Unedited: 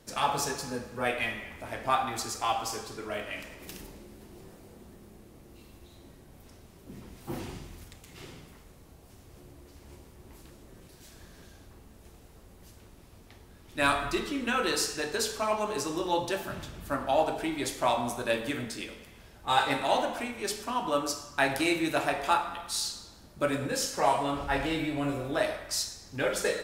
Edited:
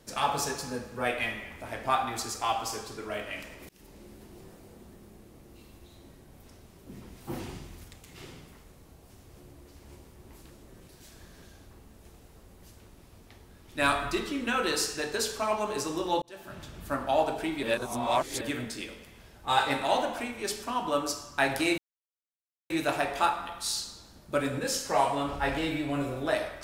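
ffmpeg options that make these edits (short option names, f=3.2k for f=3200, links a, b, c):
-filter_complex "[0:a]asplit=6[a][b][c][d][e][f];[a]atrim=end=3.69,asetpts=PTS-STARTPTS,afade=t=out:st=3.686:d=0.004:c=hsin[g];[b]atrim=start=3.69:end=16.22,asetpts=PTS-STARTPTS,afade=t=in:d=0.38,afade=t=out:st=12.526:d=0.004:c=hsin[h];[c]atrim=start=16.22:end=17.632,asetpts=PTS-STARTPTS,afade=t=in:d=0.62[i];[d]atrim=start=17.628:end=18.412,asetpts=PTS-STARTPTS,areverse[j];[e]atrim=start=18.408:end=21.78,asetpts=PTS-STARTPTS,afade=t=out:st=3.368:d=0.004:c=hsin,apad=pad_dur=0.92[k];[f]atrim=start=21.78,asetpts=PTS-STARTPTS,afade=t=in:d=0.004:c=hsin[l];[g][h][i]concat=n=3:v=0:a=1[m];[m][j]acrossfade=d=0.004:c1=hsin:c2=hsin[n];[k][l]concat=n=2:v=0:a=1[o];[n][o]acrossfade=d=0.004:c1=hsin:c2=hsin"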